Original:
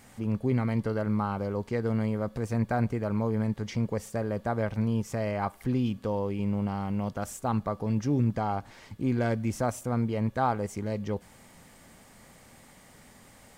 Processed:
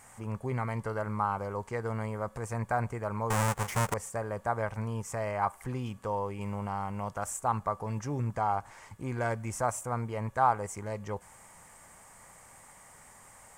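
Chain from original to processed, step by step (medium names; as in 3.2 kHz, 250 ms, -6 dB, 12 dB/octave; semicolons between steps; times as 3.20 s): 3.30–3.94 s: square wave that keeps the level; ten-band graphic EQ 250 Hz -8 dB, 1 kHz +9 dB, 2 kHz +3 dB, 4 kHz -8 dB, 8 kHz +11 dB; 6.41–7.99 s: tape noise reduction on one side only encoder only; trim -4 dB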